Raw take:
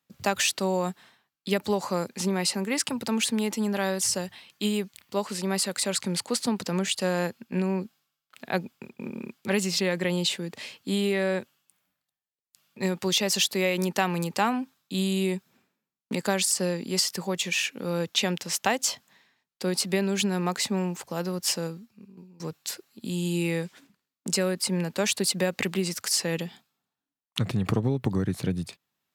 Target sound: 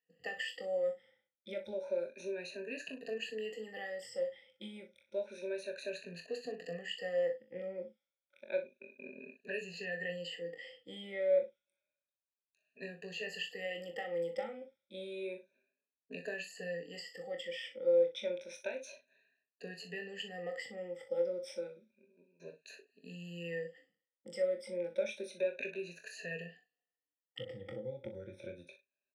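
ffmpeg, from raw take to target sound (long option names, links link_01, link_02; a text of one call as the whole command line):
ffmpeg -i in.wav -filter_complex "[0:a]afftfilt=real='re*pow(10,23/40*sin(2*PI*(1.5*log(max(b,1)*sr/1024/100)/log(2)-(0.3)*(pts-256)/sr)))':imag='im*pow(10,23/40*sin(2*PI*(1.5*log(max(b,1)*sr/1024/100)/log(2)-(0.3)*(pts-256)/sr)))':win_size=1024:overlap=0.75,lowshelf=frequency=150:gain=7.5,acompressor=threshold=-20dB:ratio=2,asplit=3[link_01][link_02][link_03];[link_01]bandpass=frequency=530:width_type=q:width=8,volume=0dB[link_04];[link_02]bandpass=frequency=1840:width_type=q:width=8,volume=-6dB[link_05];[link_03]bandpass=frequency=2480:width_type=q:width=8,volume=-9dB[link_06];[link_04][link_05][link_06]amix=inputs=3:normalize=0,asplit=2[link_07][link_08];[link_08]adelay=41,volume=-11dB[link_09];[link_07][link_09]amix=inputs=2:normalize=0,asplit=2[link_10][link_11];[link_11]aecho=0:1:23|60:0.473|0.237[link_12];[link_10][link_12]amix=inputs=2:normalize=0,volume=-5.5dB" out.wav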